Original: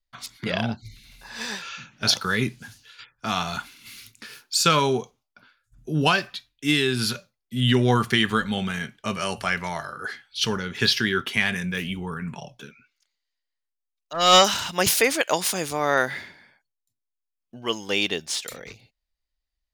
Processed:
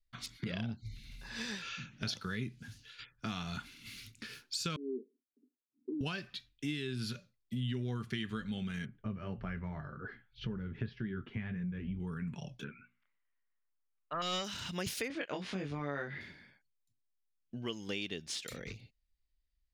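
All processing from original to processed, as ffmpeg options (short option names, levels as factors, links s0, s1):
-filter_complex "[0:a]asettb=1/sr,asplit=3[s0][s1][s2];[s0]atrim=end=4.764[s3];[s1]atrim=start=4.76:end=6.01,asetpts=PTS-STARTPTS,afade=t=in:d=0.004:c=qsin,afade=t=out:st=1.246:d=0.004:c=qsin,volume=9.44,asoftclip=hard,volume=0.106,asuperpass=centerf=320:order=8:qfactor=1.8[s4];[s2]atrim=start=6.006[s5];[s3][s4]acrossfade=d=0.004:c1=hsin:c2=qsin[s6];[s6][s5]acrossfade=d=0.004:c1=qsin:c2=hsin,asettb=1/sr,asplit=3[s7][s8][s9];[s7]atrim=end=8.854[s10];[s8]atrim=start=8.85:end=12,asetpts=PTS-STARTPTS,afade=t=in:d=0.004:c=qsin,afade=t=out:st=3.146:d=0.004:c=qsin,lowpass=1400,lowshelf=f=110:g=11,flanger=delay=4.9:depth=5.1:regen=-54:speed=1.8:shape=triangular[s11];[s9]atrim=start=11.996[s12];[s10][s11]acrossfade=d=0.004:c1=hsin:c2=qsin[s13];[s13][s12]acrossfade=d=0.004:c1=qsin:c2=hsin,asettb=1/sr,asplit=3[s14][s15][s16];[s14]atrim=end=12.644[s17];[s15]atrim=start=12.64:end=14.22,asetpts=PTS-STARTPTS,afade=t=in:d=0.004:c=qsin,afade=t=out:st=1.576:d=0.004:c=qsin,lowpass=f=2500:w=0.5412,lowpass=f=2500:w=1.3066,equalizer=f=1100:t=o:w=1.2:g=12,bandreject=f=60:t=h:w=6,bandreject=f=120:t=h:w=6,bandreject=f=180:t=h:w=6,bandreject=f=240:t=h:w=6,bandreject=f=300:t=h:w=6,bandreject=f=360:t=h:w=6[s18];[s16]atrim=start=14.216[s19];[s17][s18]acrossfade=d=0.004:c1=hsin:c2=qsin[s20];[s20][s19]acrossfade=d=0.004:c1=qsin:c2=hsin,asettb=1/sr,asplit=3[s21][s22][s23];[s21]atrim=end=15.084[s24];[s22]atrim=start=15.08:end=16.21,asetpts=PTS-STARTPTS,afade=t=in:d=0.004:c=qsin,afade=t=out:st=1.126:d=0.004:c=qsin,lowpass=2700,asplit=2[s25][s26];[s26]adelay=21,volume=0.75[s27];[s25][s27]amix=inputs=2:normalize=0,atrim=end_sample=49833[s28];[s23]atrim=start=16.206[s29];[s24][s28]acrossfade=d=0.004:c1=hsin:c2=qsin[s30];[s30][s29]acrossfade=d=0.004:c1=qsin:c2=hsin,lowpass=f=2000:p=1,equalizer=f=830:t=o:w=2:g=-14,acompressor=threshold=0.01:ratio=4,volume=1.41"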